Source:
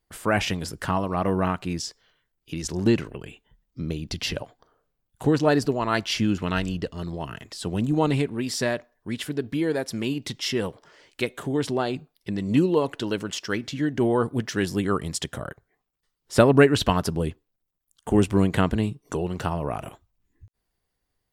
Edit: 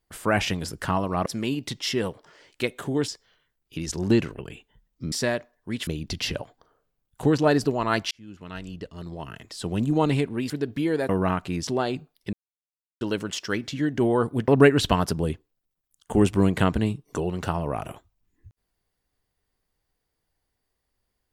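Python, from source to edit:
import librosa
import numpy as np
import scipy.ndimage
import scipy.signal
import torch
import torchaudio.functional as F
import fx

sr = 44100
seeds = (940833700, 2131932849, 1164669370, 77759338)

y = fx.edit(x, sr, fx.swap(start_s=1.26, length_s=0.58, other_s=9.85, other_length_s=1.82),
    fx.fade_in_span(start_s=6.12, length_s=1.69),
    fx.move(start_s=8.51, length_s=0.75, to_s=3.88),
    fx.silence(start_s=12.33, length_s=0.68),
    fx.cut(start_s=14.48, length_s=1.97), tone=tone)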